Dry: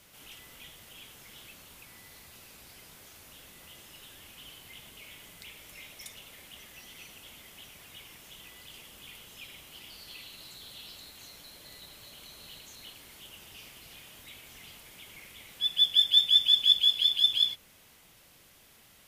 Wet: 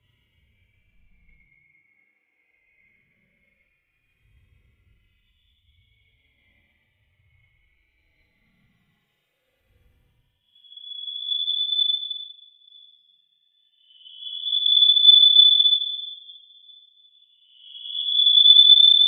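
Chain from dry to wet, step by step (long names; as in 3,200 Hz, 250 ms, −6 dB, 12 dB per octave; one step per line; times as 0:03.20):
expanding power law on the bin magnitudes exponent 2.1
extreme stretch with random phases 21×, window 0.05 s, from 0:15.10
multiband upward and downward expander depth 100%
level −2.5 dB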